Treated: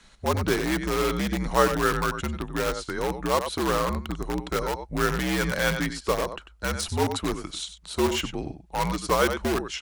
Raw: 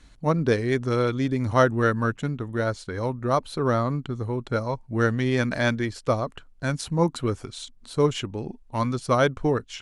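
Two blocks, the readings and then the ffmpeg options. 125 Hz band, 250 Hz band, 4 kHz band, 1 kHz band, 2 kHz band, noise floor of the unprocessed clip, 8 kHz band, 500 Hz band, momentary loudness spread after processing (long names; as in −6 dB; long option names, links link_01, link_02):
−6.0 dB, −2.5 dB, +4.5 dB, +0.5 dB, +1.0 dB, −52 dBFS, +7.0 dB, −2.0 dB, 9 LU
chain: -filter_complex "[0:a]lowshelf=frequency=290:gain=-9.5,afreqshift=-69,aecho=1:1:95:0.266,asplit=2[link_01][link_02];[link_02]aeval=exprs='(mod(14.1*val(0)+1,2)-1)/14.1':channel_layout=same,volume=-4dB[link_03];[link_01][link_03]amix=inputs=2:normalize=0"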